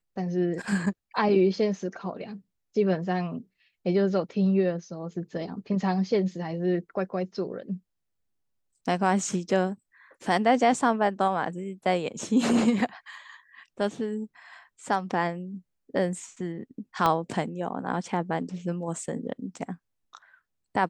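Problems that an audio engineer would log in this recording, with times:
17.06 s: pop -11 dBFS

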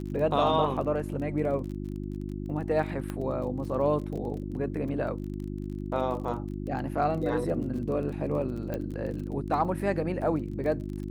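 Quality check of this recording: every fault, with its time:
crackle 30 per s -37 dBFS
hum 50 Hz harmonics 7 -35 dBFS
3.10 s: pop -21 dBFS
8.74 s: pop -20 dBFS

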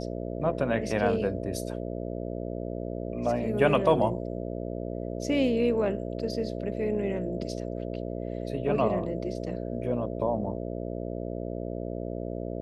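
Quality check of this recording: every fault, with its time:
buzz 60 Hz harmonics 11 -34 dBFS

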